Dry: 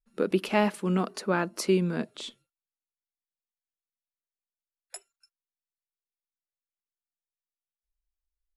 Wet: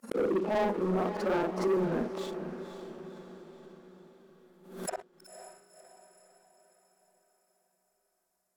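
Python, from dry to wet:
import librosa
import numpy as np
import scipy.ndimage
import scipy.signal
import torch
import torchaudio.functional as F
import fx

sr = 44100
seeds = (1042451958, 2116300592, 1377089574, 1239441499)

y = fx.frame_reverse(x, sr, frame_ms=120.0)
y = fx.recorder_agc(y, sr, target_db=-21.0, rise_db_per_s=11.0, max_gain_db=30)
y = fx.hum_notches(y, sr, base_hz=60, count=7)
y = fx.env_lowpass_down(y, sr, base_hz=1200.0, full_db=-29.5)
y = scipy.signal.sosfilt(scipy.signal.butter(2, 280.0, 'highpass', fs=sr, output='sos'), y)
y = fx.peak_eq(y, sr, hz=3200.0, db=-15.0, octaves=1.5)
y = fx.leveller(y, sr, passes=3)
y = fx.echo_diffused(y, sr, ms=525, feedback_pct=53, wet_db=-10)
y = fx.pre_swell(y, sr, db_per_s=94.0)
y = y * librosa.db_to_amplitude(-2.5)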